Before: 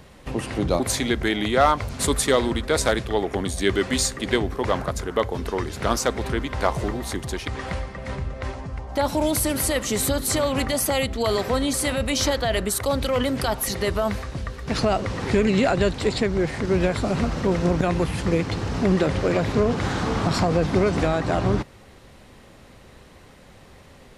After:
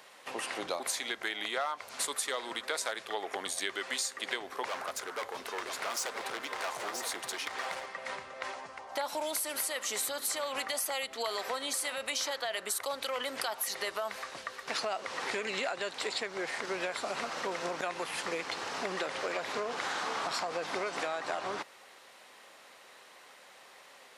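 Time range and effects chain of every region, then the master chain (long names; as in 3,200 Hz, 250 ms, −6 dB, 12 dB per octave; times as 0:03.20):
0:04.68–0:07.86: hard clipping −25.5 dBFS + single-tap delay 977 ms −8.5 dB
whole clip: high-pass filter 750 Hz 12 dB per octave; downward compressor, threshold −30 dBFS; level −1 dB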